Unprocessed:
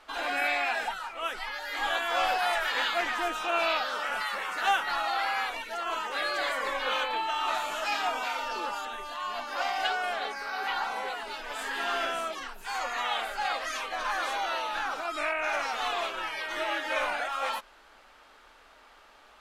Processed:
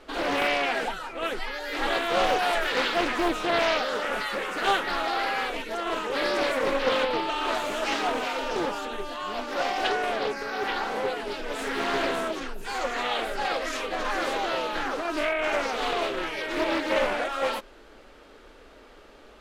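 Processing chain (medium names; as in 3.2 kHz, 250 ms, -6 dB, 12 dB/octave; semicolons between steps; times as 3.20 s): resonant low shelf 610 Hz +10 dB, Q 1.5; loudspeaker Doppler distortion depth 0.52 ms; trim +2.5 dB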